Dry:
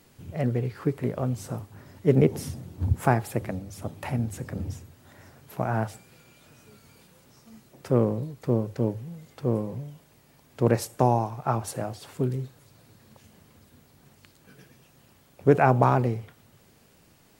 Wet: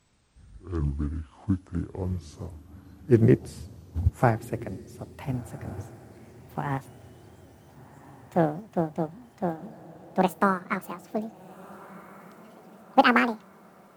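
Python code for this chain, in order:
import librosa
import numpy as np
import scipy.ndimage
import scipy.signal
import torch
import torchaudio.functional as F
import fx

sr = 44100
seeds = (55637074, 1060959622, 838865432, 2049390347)

y = fx.speed_glide(x, sr, from_pct=50, to_pct=199)
y = fx.echo_diffused(y, sr, ms=1431, feedback_pct=55, wet_db=-13)
y = fx.upward_expand(y, sr, threshold_db=-35.0, expansion=1.5)
y = y * librosa.db_to_amplitude(2.0)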